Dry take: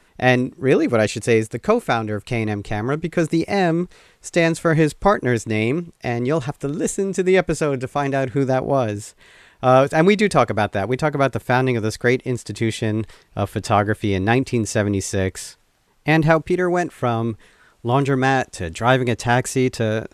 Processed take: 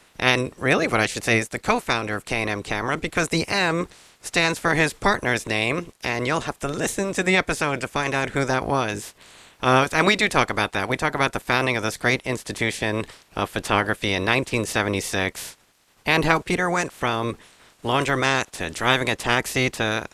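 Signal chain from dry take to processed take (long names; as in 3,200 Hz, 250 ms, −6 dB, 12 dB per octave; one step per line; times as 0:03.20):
ceiling on every frequency bin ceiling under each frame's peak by 19 dB
in parallel at −2 dB: downward compressor, threshold −29 dBFS, peak gain reduction 18.5 dB
on the sum: level −4.5 dB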